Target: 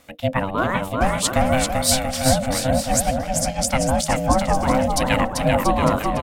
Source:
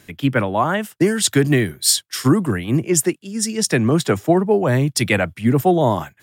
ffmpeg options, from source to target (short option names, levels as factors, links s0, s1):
-af "aeval=exprs='val(0)*sin(2*PI*390*n/s)':c=same,aecho=1:1:390|682.5|901.9|1066|1190:0.631|0.398|0.251|0.158|0.1,volume=0.891"